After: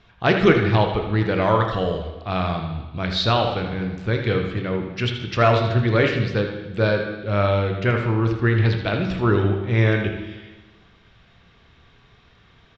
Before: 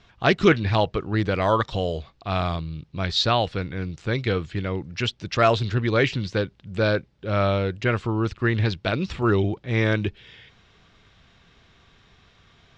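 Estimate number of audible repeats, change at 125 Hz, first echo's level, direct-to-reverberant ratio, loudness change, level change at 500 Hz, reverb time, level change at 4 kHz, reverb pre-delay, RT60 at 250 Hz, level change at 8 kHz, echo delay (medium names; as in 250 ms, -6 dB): 1, +4.0 dB, -9.5 dB, 3.0 dB, +2.5 dB, +2.5 dB, 1.2 s, 0.0 dB, 15 ms, 1.2 s, no reading, 80 ms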